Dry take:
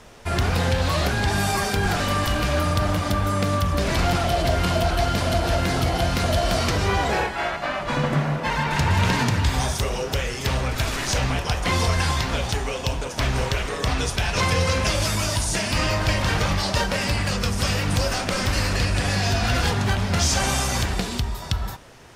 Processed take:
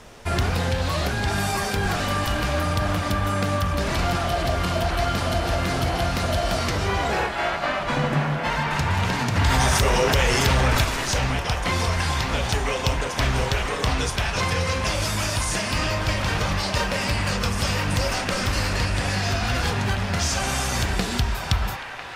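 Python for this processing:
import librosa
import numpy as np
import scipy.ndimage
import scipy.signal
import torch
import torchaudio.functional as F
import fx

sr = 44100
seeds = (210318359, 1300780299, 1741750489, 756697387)

y = fx.rider(x, sr, range_db=4, speed_s=0.5)
y = fx.echo_wet_bandpass(y, sr, ms=999, feedback_pct=69, hz=1500.0, wet_db=-6)
y = fx.env_flatten(y, sr, amount_pct=70, at=(9.35, 10.83), fade=0.02)
y = F.gain(torch.from_numpy(y), -1.5).numpy()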